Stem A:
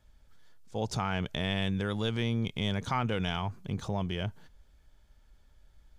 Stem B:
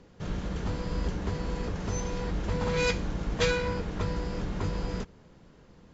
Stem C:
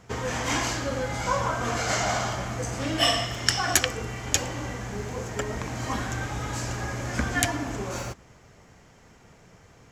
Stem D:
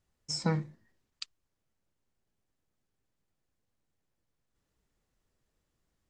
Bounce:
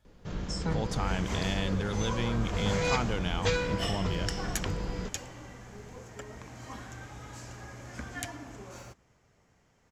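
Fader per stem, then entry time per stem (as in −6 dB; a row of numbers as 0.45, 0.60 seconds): −1.5, −2.5, −13.5, −4.0 decibels; 0.00, 0.05, 0.80, 0.20 seconds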